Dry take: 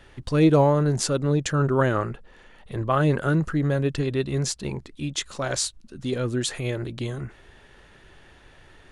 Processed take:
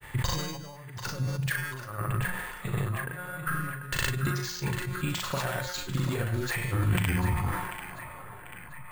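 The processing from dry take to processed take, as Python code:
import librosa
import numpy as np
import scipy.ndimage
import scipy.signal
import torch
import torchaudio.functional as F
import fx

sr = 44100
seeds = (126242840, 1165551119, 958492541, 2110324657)

y = fx.tape_stop_end(x, sr, length_s=2.4)
y = fx.graphic_eq(y, sr, hz=(125, 250, 1000, 2000, 8000), db=(12, -4, 8, 8, 10))
y = fx.over_compress(y, sr, threshold_db=-24.0, ratio=-0.5)
y = fx.comb_fb(y, sr, f0_hz=180.0, decay_s=1.3, harmonics='all', damping=0.0, mix_pct=80)
y = fx.granulator(y, sr, seeds[0], grain_ms=100.0, per_s=20.0, spray_ms=100.0, spread_st=0)
y = fx.doubler(y, sr, ms=38.0, db=-8)
y = fx.echo_banded(y, sr, ms=741, feedback_pct=67, hz=1600.0, wet_db=-8)
y = np.repeat(scipy.signal.resample_poly(y, 1, 4), 4)[:len(y)]
y = fx.sustainer(y, sr, db_per_s=41.0)
y = y * librosa.db_to_amplitude(6.5)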